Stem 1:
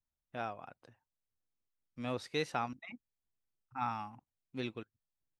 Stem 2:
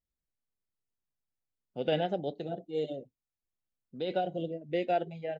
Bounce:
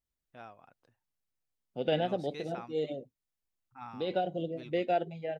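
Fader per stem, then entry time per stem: -9.5 dB, 0.0 dB; 0.00 s, 0.00 s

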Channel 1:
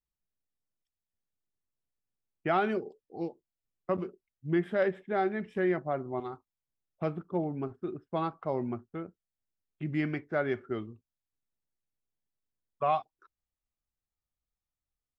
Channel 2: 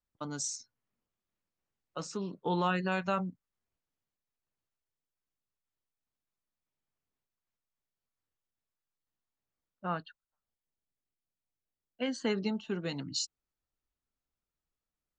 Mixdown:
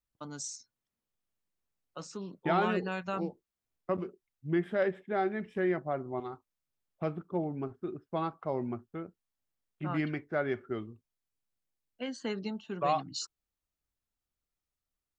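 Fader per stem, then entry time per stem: -1.5 dB, -4.0 dB; 0.00 s, 0.00 s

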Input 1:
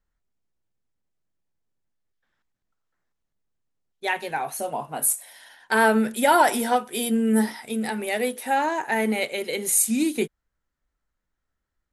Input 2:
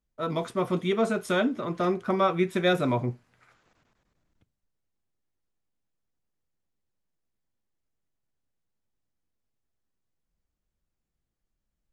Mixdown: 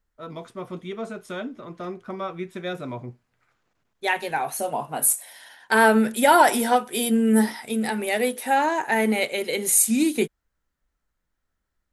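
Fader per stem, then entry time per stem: +2.0 dB, -7.5 dB; 0.00 s, 0.00 s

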